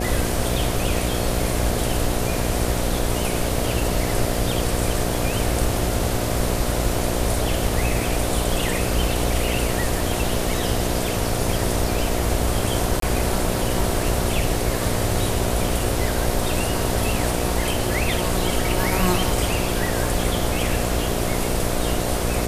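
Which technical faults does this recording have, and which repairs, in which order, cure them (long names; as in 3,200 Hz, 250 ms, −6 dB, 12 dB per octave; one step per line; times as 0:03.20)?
mains buzz 60 Hz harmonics 12 −26 dBFS
0:13.00–0:13.02: drop-out 23 ms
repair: hum removal 60 Hz, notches 12
repair the gap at 0:13.00, 23 ms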